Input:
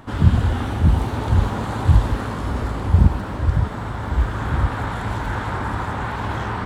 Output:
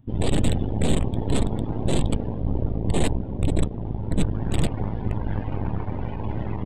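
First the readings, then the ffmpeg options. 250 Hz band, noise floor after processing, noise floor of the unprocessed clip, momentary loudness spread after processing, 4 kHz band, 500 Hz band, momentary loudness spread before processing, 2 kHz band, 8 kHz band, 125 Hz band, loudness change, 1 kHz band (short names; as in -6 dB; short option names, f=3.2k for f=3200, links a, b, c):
0.0 dB, -31 dBFS, -28 dBFS, 6 LU, +0.5 dB, +0.5 dB, 9 LU, -10.5 dB, n/a, -6.0 dB, -5.0 dB, -10.0 dB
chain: -af "aresample=8000,aeval=exprs='(mod(4.47*val(0)+1,2)-1)/4.47':c=same,aresample=44100,aeval=exprs='0.376*(cos(1*acos(clip(val(0)/0.376,-1,1)))-cos(1*PI/2))+0.0237*(cos(5*acos(clip(val(0)/0.376,-1,1)))-cos(5*PI/2))+0.15*(cos(6*acos(clip(val(0)/0.376,-1,1)))-cos(6*PI/2))+0.0237*(cos(8*acos(clip(val(0)/0.376,-1,1)))-cos(8*PI/2))':c=same,equalizer=f=1.3k:t=o:w=1.7:g=-14.5,afftdn=nr=18:nf=-32,volume=-3.5dB"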